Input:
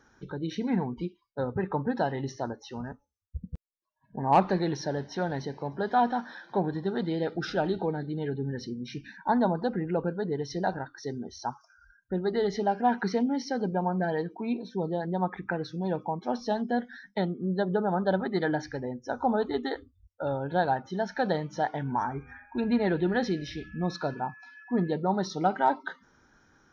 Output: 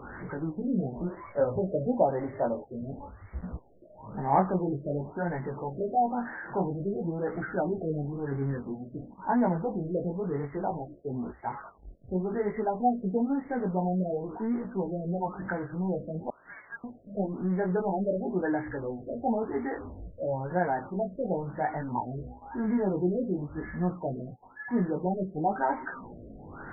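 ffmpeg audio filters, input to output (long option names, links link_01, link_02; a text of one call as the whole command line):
ffmpeg -i in.wav -filter_complex "[0:a]aeval=exprs='val(0)+0.5*0.0224*sgn(val(0))':channel_layout=same,asettb=1/sr,asplit=3[link_01][link_02][link_03];[link_01]atrim=end=0.834[link_04];[link_02]atrim=start=0.83:end=2.61,asetpts=PTS-STARTPTS,afade=type=in:duration=0.004:curve=qsin,afade=type=out:start_time=1.776:duration=0.004:curve=qsin,equalizer=frequency=590:width_type=o:width=0.4:gain=12[link_05];[link_03]atrim=start=2.606[link_06];[link_04][link_05]acrossfade=duration=0.004:curve1=hsin:curve2=qsin[link_07];[link_07][link_06]acrossfade=duration=0.004:curve1=qsin:curve2=hsin,flanger=delay=16:depth=6.2:speed=0.54,asettb=1/sr,asplit=3[link_08][link_09][link_10];[link_08]atrim=end=16.304[link_11];[link_09]atrim=start=16.3:end=16.84,asetpts=PTS-STARTPTS,afade=type=in:duration=0.004:curve=qsin,afade=type=out:start_time=0.536:duration=0.004:curve=qsin,lowpass=frequency=2800:width_type=q:width=0.5098,lowpass=frequency=2800:width_type=q:width=0.6013,lowpass=frequency=2800:width_type=q:width=0.9,lowpass=frequency=2800:width_type=q:width=2.563,afreqshift=-3300[link_12];[link_10]atrim=start=16.836[link_13];[link_11][link_12]acrossfade=duration=0.004:curve1=hsin:curve2=qsin[link_14];[link_14][link_13]acrossfade=duration=0.004:curve1=qsin:curve2=hsin,afftfilt=real='re*lt(b*sr/1024,680*pow(2300/680,0.5+0.5*sin(2*PI*0.98*pts/sr)))':imag='im*lt(b*sr/1024,680*pow(2300/680,0.5+0.5*sin(2*PI*0.98*pts/sr)))':win_size=1024:overlap=0.75" out.wav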